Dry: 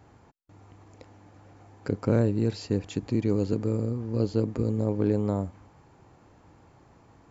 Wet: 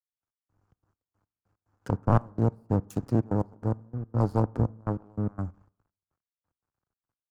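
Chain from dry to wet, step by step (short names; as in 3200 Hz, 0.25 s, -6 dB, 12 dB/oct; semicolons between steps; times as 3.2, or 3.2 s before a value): self-modulated delay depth 0.74 ms; in parallel at +2.5 dB: compressor, threshold -39 dBFS, peak gain reduction 18.5 dB; on the sum: crossover distortion -44.5 dBFS; band shelf 2700 Hz -9 dB 1.3 oct; step gate "..x.xxx.x..x" 145 bpm -24 dB; EQ curve 110 Hz 0 dB, 580 Hz -7 dB, 1300 Hz -1 dB, 4600 Hz -13 dB; on a send at -23 dB: reverb RT60 1.0 s, pre-delay 13 ms; on the sum: three-band expander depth 70%; gain +2.5 dB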